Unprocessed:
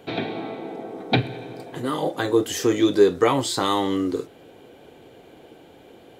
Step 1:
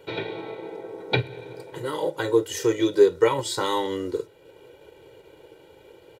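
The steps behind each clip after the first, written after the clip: hum notches 50/100/150 Hz; comb 2.1 ms, depth 88%; transient shaper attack 0 dB, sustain -4 dB; trim -4.5 dB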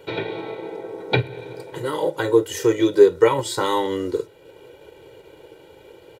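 dynamic bell 4.9 kHz, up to -4 dB, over -41 dBFS, Q 0.78; trim +4 dB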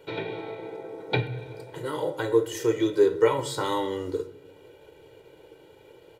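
reverberation RT60 0.80 s, pre-delay 7 ms, DRR 7.5 dB; trim -6.5 dB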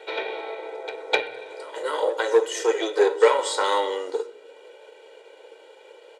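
Chebyshev shaper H 6 -24 dB, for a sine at -8 dBFS; Chebyshev band-pass 490–8800 Hz, order 3; pre-echo 255 ms -15 dB; trim +6.5 dB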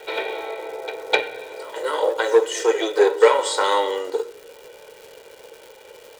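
crackle 350 per s -38 dBFS; trim +3 dB

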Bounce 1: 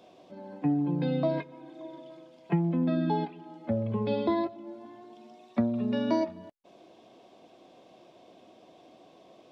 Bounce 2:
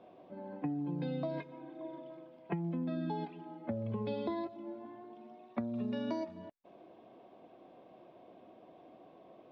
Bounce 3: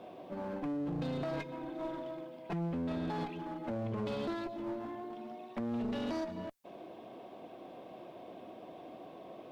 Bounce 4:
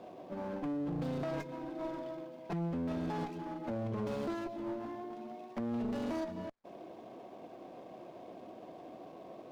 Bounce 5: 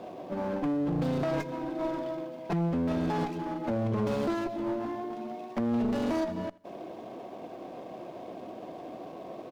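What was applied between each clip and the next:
level-controlled noise filter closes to 1.8 kHz, open at -22.5 dBFS; compression 6:1, threshold -32 dBFS, peak gain reduction 11 dB; trim -1.5 dB
treble shelf 3.9 kHz +7.5 dB; peak limiter -33.5 dBFS, peak gain reduction 10 dB; one-sided clip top -47 dBFS, bottom -35.5 dBFS; trim +7.5 dB
median filter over 15 samples
feedback delay 81 ms, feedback 33%, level -22 dB; trim +7.5 dB

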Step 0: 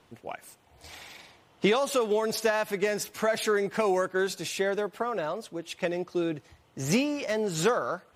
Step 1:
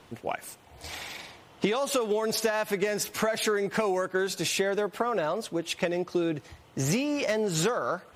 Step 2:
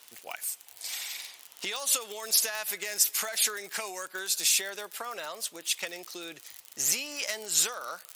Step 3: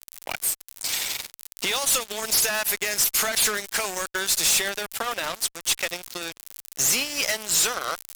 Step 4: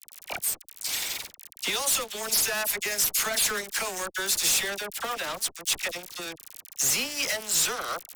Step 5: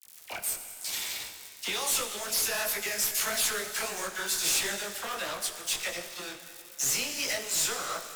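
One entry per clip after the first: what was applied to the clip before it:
compression 6:1, threshold -31 dBFS, peak gain reduction 11.5 dB; trim +7 dB
crackle 41 per s -35 dBFS; differentiator; trim +8.5 dB
fuzz box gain 33 dB, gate -39 dBFS; trim -4.5 dB
phase dispersion lows, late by 42 ms, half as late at 1.2 kHz; trim -3 dB
plate-style reverb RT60 2.8 s, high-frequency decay 0.85×, DRR 7 dB; detune thickener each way 52 cents

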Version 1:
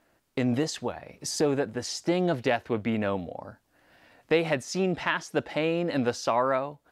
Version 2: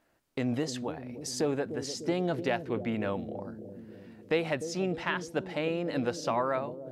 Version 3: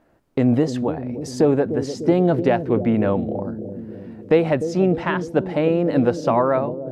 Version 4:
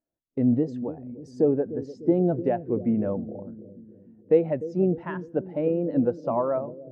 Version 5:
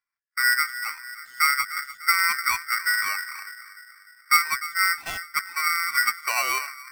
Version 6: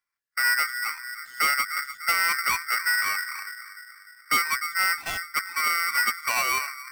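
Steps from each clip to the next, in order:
bucket-brigade echo 299 ms, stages 1024, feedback 65%, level -9 dB; trim -4.5 dB
tilt shelf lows +7.5 dB, about 1.5 kHz; trim +6.5 dB
thinning echo 86 ms, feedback 48%, level -22 dB; spectral contrast expander 1.5:1; trim -4 dB
polarity switched at an audio rate 1.7 kHz
saturation -20 dBFS, distortion -12 dB; trim +2 dB

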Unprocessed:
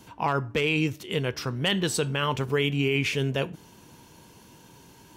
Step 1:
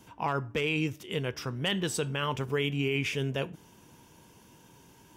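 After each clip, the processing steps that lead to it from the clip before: band-stop 4.2 kHz, Q 7.6; trim -4.5 dB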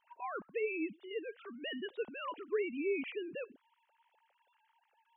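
formants replaced by sine waves; trim -8 dB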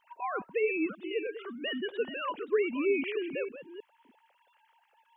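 chunks repeated in reverse 317 ms, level -11 dB; trim +6.5 dB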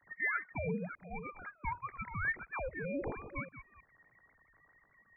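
steep high-pass 650 Hz 36 dB/octave; frequency inversion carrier 2.8 kHz; trim +1 dB

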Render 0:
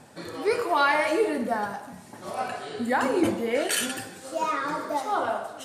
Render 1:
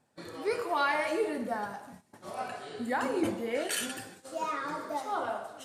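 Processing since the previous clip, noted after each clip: gate -42 dBFS, range -15 dB; trim -6.5 dB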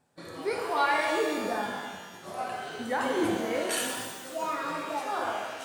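pitch-shifted reverb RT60 1.4 s, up +12 st, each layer -8 dB, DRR 1.5 dB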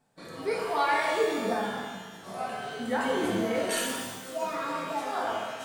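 reverberation RT60 0.50 s, pre-delay 4 ms, DRR 2 dB; trim -2 dB

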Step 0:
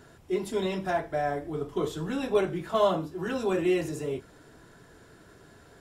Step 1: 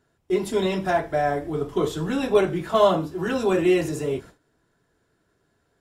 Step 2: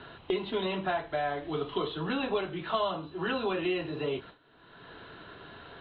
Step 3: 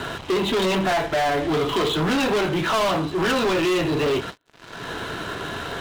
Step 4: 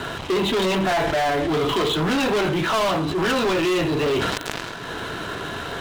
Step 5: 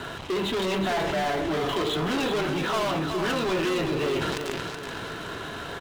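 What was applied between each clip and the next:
gate with hold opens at -40 dBFS; trim +6 dB
rippled Chebyshev low-pass 4.1 kHz, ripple 6 dB; treble shelf 2.2 kHz +10 dB; three bands compressed up and down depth 100%; trim -6.5 dB
waveshaping leveller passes 5
decay stretcher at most 23 dB/s
feedback delay 375 ms, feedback 42%, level -7 dB; trim -6 dB

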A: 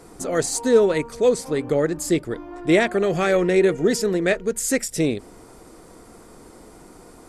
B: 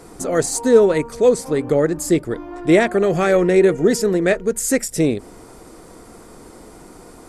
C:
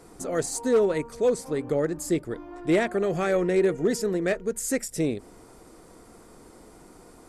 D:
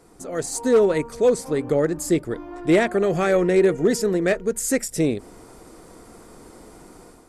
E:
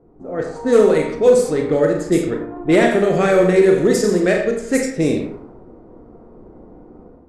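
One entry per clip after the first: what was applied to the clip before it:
dynamic bell 3.4 kHz, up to -5 dB, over -40 dBFS, Q 0.79; trim +4 dB
hard clipper -6.5 dBFS, distortion -23 dB; trim -8.5 dB
level rider gain up to 8 dB; trim -3 dB
Schroeder reverb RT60 0.73 s, combs from 30 ms, DRR 1.5 dB; level-controlled noise filter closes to 540 Hz, open at -13 dBFS; trim +2.5 dB

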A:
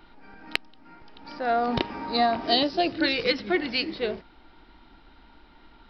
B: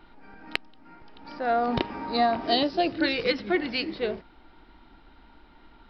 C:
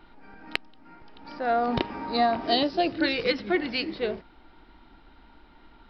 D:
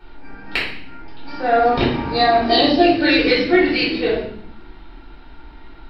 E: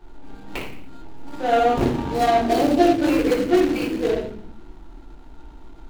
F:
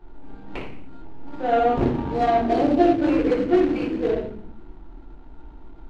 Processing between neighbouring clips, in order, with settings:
treble shelf 3.8 kHz -6.5 dB
no audible change
reverberation RT60 0.60 s, pre-delay 3 ms, DRR -9 dB; trim -1 dB
median filter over 25 samples; trim -1.5 dB
tape spacing loss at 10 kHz 23 dB

